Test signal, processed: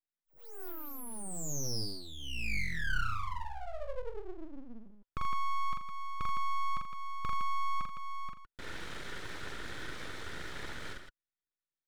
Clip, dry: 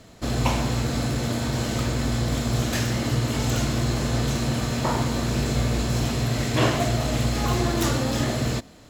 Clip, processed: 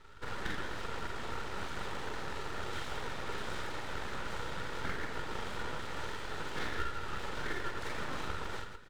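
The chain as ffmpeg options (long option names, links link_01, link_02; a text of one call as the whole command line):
ffmpeg -i in.wav -filter_complex "[0:a]equalizer=frequency=250:width_type=o:width=0.33:gain=7,equalizer=frequency=400:width_type=o:width=0.33:gain=-9,equalizer=frequency=1000:width_type=o:width=0.33:gain=5,equalizer=frequency=1600:width_type=o:width=0.33:gain=-6,equalizer=frequency=3150:width_type=o:width=0.33:gain=8,equalizer=frequency=8000:width_type=o:width=0.33:gain=6,aresample=22050,aresample=44100,asplit=3[link_01][link_02][link_03];[link_01]bandpass=frequency=730:width_type=q:width=8,volume=0dB[link_04];[link_02]bandpass=frequency=1090:width_type=q:width=8,volume=-6dB[link_05];[link_03]bandpass=frequency=2440:width_type=q:width=8,volume=-9dB[link_06];[link_04][link_05][link_06]amix=inputs=3:normalize=0,equalizer=frequency=2800:width_type=o:width=2.8:gain=-4,acompressor=threshold=-45dB:ratio=2.5,asplit=2[link_07][link_08];[link_08]aecho=0:1:43.73|81.63|160.3:0.794|0.316|0.447[link_09];[link_07][link_09]amix=inputs=2:normalize=0,aeval=exprs='abs(val(0))':channel_layout=same,volume=7.5dB" out.wav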